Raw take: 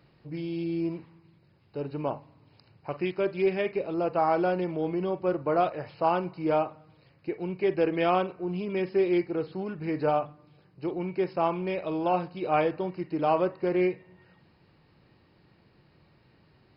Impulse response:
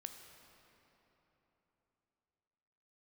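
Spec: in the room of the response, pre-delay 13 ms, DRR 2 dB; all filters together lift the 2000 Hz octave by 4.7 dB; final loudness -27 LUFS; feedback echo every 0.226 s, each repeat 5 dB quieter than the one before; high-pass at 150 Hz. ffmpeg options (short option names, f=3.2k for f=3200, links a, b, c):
-filter_complex "[0:a]highpass=150,equalizer=f=2k:t=o:g=6,aecho=1:1:226|452|678|904|1130|1356|1582:0.562|0.315|0.176|0.0988|0.0553|0.031|0.0173,asplit=2[a][b];[1:a]atrim=start_sample=2205,adelay=13[c];[b][c]afir=irnorm=-1:irlink=0,volume=2dB[d];[a][d]amix=inputs=2:normalize=0,volume=-2dB"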